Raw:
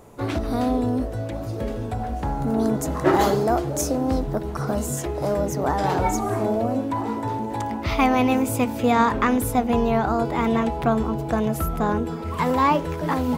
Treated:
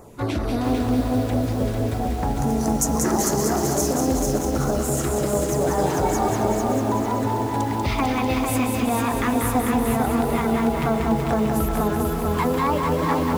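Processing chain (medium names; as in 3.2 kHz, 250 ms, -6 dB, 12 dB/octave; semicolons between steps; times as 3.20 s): 2.37–3.59 s: resonant high shelf 4.6 kHz +9 dB, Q 3; compression, threshold -22 dBFS, peak gain reduction 9 dB; LFO notch saw down 4.5 Hz 340–3700 Hz; on a send: thinning echo 190 ms, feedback 60%, high-pass 160 Hz, level -5 dB; on the sum: bit-crushed delay 447 ms, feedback 35%, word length 7-bit, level -3.5 dB; trim +3 dB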